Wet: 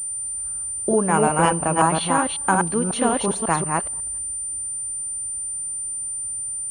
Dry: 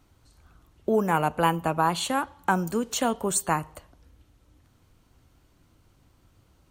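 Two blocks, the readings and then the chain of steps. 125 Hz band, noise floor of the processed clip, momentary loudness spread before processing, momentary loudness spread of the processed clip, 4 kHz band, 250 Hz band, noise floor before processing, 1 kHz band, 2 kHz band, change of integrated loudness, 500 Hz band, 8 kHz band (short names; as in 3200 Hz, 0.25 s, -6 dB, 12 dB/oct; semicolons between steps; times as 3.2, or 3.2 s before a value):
+5.5 dB, -29 dBFS, 5 LU, 7 LU, +2.0 dB, +5.5 dB, -63 dBFS, +5.0 dB, +5.0 dB, +4.0 dB, +5.0 dB, +13.5 dB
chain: reverse delay 0.182 s, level -2 dB; air absorption 51 m; pulse-width modulation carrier 9100 Hz; gain +3.5 dB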